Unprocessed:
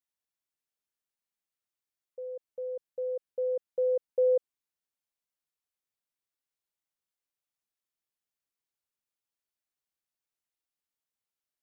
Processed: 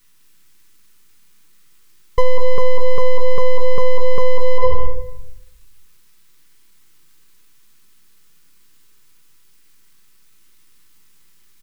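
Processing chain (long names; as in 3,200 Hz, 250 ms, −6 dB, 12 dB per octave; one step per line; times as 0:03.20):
low-shelf EQ 350 Hz +4.5 dB
on a send: single-tap delay 204 ms −4 dB
on the sum: half-wave rectification
Butterworth band-reject 660 Hz, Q 1.8
parametric band 660 Hz −7 dB 0.72 octaves
rectangular room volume 220 cubic metres, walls mixed, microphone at 0.67 metres
boost into a limiter +36 dB
level −1 dB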